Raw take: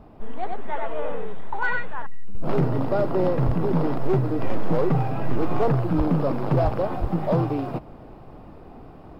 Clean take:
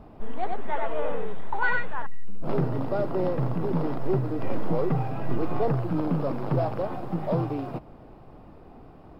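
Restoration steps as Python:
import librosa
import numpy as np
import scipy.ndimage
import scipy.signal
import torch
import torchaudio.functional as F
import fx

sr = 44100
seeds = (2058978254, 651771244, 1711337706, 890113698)

y = fx.fix_declip(x, sr, threshold_db=-13.0)
y = fx.fix_deplosive(y, sr, at_s=(3.45, 5.97, 6.63, 7.0))
y = fx.gain(y, sr, db=fx.steps((0.0, 0.0), (2.35, -4.5)))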